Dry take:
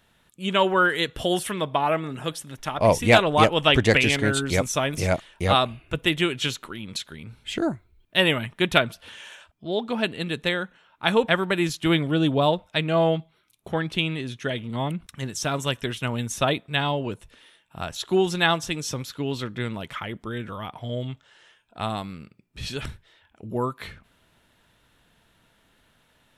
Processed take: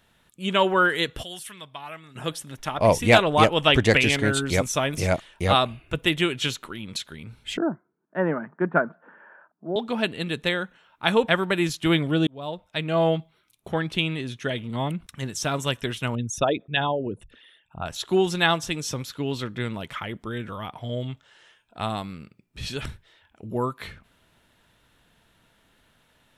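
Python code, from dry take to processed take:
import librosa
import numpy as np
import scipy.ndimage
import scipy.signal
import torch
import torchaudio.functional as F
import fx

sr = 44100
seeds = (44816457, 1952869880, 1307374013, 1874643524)

y = fx.tone_stack(x, sr, knobs='5-5-5', at=(1.22, 2.15), fade=0.02)
y = fx.cheby1_bandpass(y, sr, low_hz=160.0, high_hz=1600.0, order=4, at=(7.57, 9.76))
y = fx.envelope_sharpen(y, sr, power=2.0, at=(16.15, 17.86))
y = fx.edit(y, sr, fx.fade_in_span(start_s=12.27, length_s=0.81), tone=tone)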